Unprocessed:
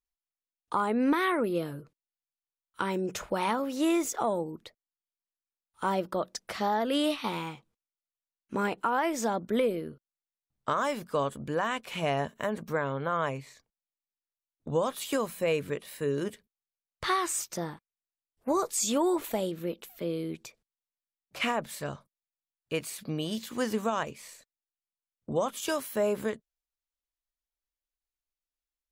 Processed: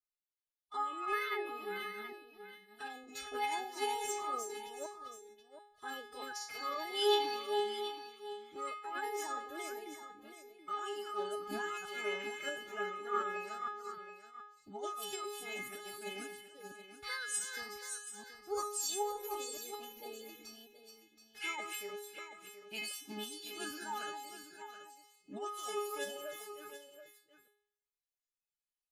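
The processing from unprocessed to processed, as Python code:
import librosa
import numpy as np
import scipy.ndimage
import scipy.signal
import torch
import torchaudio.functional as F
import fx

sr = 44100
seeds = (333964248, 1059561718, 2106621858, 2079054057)

y = fx.reverse_delay(x, sr, ms=304, wet_db=-5)
y = fx.highpass(y, sr, hz=47.0, slope=6)
y = fx.peak_eq(y, sr, hz=440.0, db=-7.5, octaves=2.4)
y = fx.stiff_resonator(y, sr, f0_hz=300.0, decay_s=0.65, stiffness=0.002)
y = fx.pitch_keep_formants(y, sr, semitones=5.5)
y = y + 10.0 ** (-11.0 / 20.0) * np.pad(y, (int(727 * sr / 1000.0), 0))[:len(y)]
y = F.gain(torch.from_numpy(y), 12.0).numpy()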